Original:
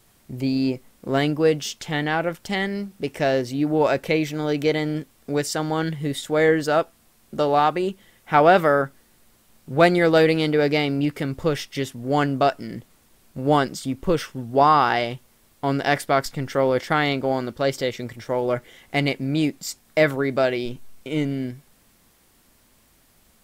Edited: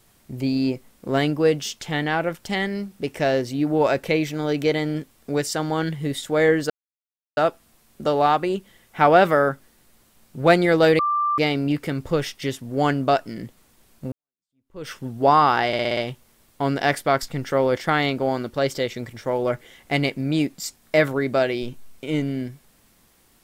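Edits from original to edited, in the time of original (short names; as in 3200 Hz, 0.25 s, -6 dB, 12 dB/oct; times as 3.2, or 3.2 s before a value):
6.7 insert silence 0.67 s
10.32–10.71 bleep 1180 Hz -18.5 dBFS
13.45–14.25 fade in exponential
15 stutter 0.06 s, 6 plays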